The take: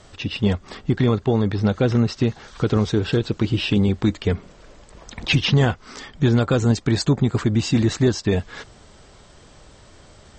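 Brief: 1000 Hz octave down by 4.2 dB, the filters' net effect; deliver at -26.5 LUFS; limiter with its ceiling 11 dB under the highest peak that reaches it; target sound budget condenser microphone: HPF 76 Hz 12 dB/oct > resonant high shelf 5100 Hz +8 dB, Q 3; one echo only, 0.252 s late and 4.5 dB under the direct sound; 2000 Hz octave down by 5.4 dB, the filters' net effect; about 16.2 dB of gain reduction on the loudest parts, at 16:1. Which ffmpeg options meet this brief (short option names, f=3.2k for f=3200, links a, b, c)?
-af "equalizer=f=1k:t=o:g=-4.5,equalizer=f=2k:t=o:g=-4,acompressor=threshold=-30dB:ratio=16,alimiter=level_in=7dB:limit=-24dB:level=0:latency=1,volume=-7dB,highpass=76,highshelf=f=5.1k:t=q:w=3:g=8,aecho=1:1:252:0.596,volume=12dB"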